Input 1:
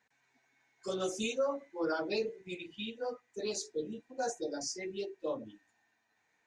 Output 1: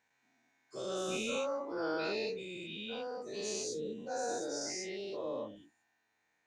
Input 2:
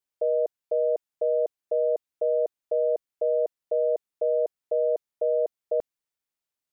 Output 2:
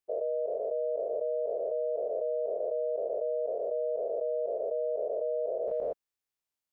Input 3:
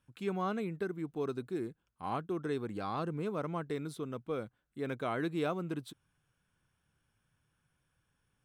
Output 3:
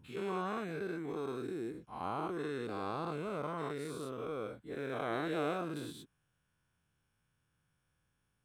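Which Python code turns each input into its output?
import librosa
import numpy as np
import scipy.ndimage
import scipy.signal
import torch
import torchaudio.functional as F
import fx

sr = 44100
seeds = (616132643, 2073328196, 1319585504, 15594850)

y = fx.spec_dilate(x, sr, span_ms=240)
y = y * 10.0 ** (-8.0 / 20.0)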